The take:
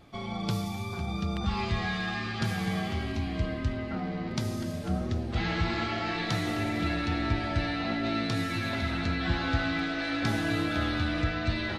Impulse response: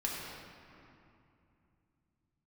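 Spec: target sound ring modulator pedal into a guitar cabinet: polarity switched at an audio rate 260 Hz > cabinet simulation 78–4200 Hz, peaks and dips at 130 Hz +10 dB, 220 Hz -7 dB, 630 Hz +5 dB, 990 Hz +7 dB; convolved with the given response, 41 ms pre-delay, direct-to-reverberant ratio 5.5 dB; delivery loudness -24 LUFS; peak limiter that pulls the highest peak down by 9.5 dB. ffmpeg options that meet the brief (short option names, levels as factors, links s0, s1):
-filter_complex "[0:a]alimiter=limit=0.0668:level=0:latency=1,asplit=2[s0][s1];[1:a]atrim=start_sample=2205,adelay=41[s2];[s1][s2]afir=irnorm=-1:irlink=0,volume=0.316[s3];[s0][s3]amix=inputs=2:normalize=0,aeval=exprs='val(0)*sgn(sin(2*PI*260*n/s))':c=same,highpass=78,equalizer=f=130:t=q:w=4:g=10,equalizer=f=220:t=q:w=4:g=-7,equalizer=f=630:t=q:w=4:g=5,equalizer=f=990:t=q:w=4:g=7,lowpass=f=4200:w=0.5412,lowpass=f=4200:w=1.3066,volume=2"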